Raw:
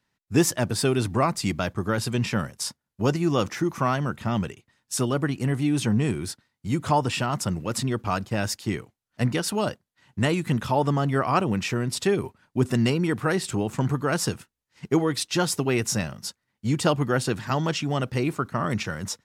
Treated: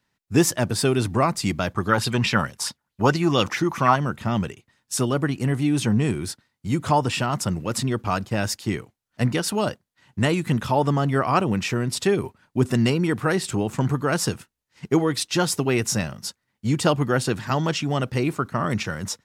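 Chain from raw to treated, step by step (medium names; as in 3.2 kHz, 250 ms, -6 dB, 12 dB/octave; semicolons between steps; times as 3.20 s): 1.75–3.96 s: sweeping bell 4.6 Hz 830–4200 Hz +12 dB; trim +2 dB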